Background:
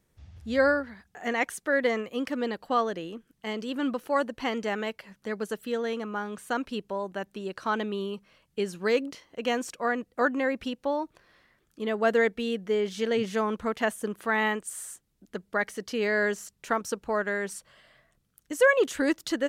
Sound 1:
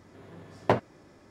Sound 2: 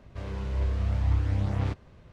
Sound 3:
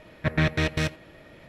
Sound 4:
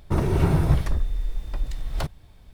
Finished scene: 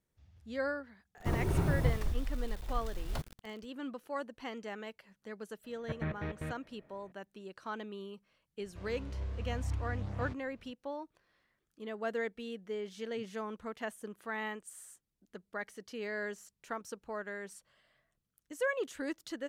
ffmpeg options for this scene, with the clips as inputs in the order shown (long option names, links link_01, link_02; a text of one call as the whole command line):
ffmpeg -i bed.wav -i cue0.wav -i cue1.wav -i cue2.wav -i cue3.wav -filter_complex "[0:a]volume=-12.5dB[link_01];[4:a]acrusher=bits=6:mix=0:aa=0.000001[link_02];[3:a]lowpass=1600[link_03];[link_02]atrim=end=2.53,asetpts=PTS-STARTPTS,volume=-10dB,afade=type=in:duration=0.1,afade=type=out:start_time=2.43:duration=0.1,adelay=1150[link_04];[link_03]atrim=end=1.48,asetpts=PTS-STARTPTS,volume=-13.5dB,afade=type=in:duration=0.004:curve=hsin,afade=type=out:start_time=1.476:duration=0.004:curve=hsin,adelay=5640[link_05];[2:a]atrim=end=2.12,asetpts=PTS-STARTPTS,volume=-11dB,afade=type=in:duration=0.004:curve=hsin,afade=type=out:start_time=2.116:duration=0.004:curve=hsin,adelay=8600[link_06];[link_01][link_04][link_05][link_06]amix=inputs=4:normalize=0" out.wav